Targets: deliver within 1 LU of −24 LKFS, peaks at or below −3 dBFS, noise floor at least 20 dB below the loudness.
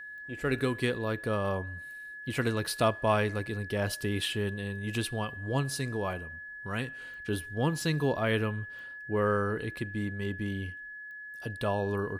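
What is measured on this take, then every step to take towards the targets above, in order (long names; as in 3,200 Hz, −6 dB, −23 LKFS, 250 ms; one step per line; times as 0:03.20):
number of clicks 5; interfering tone 1,700 Hz; level of the tone −41 dBFS; integrated loudness −32.0 LKFS; sample peak −12.5 dBFS; target loudness −24.0 LKFS
→ click removal
notch filter 1,700 Hz, Q 30
level +8 dB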